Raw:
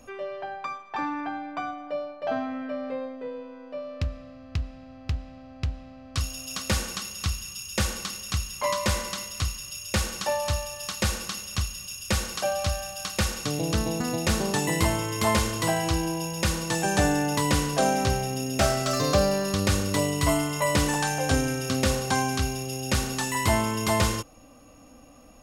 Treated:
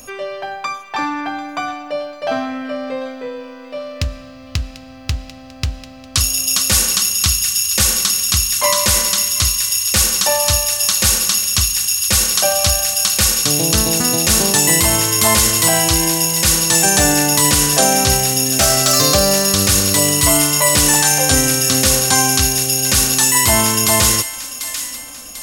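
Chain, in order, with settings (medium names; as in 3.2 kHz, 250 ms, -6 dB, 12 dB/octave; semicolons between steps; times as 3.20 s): pre-emphasis filter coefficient 0.8; feedback echo behind a high-pass 743 ms, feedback 47%, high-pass 1.5 kHz, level -13 dB; loudness maximiser +22.5 dB; trim -1 dB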